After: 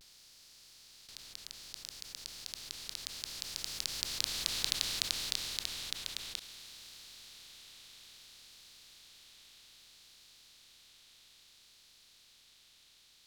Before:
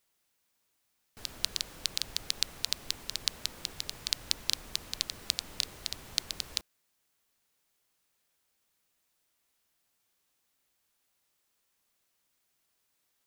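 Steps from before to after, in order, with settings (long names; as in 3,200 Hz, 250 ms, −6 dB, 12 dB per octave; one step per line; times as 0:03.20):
compressor on every frequency bin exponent 0.2
source passing by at 0:04.72, 23 m/s, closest 15 metres
pitch vibrato 0.61 Hz 58 cents
level −5 dB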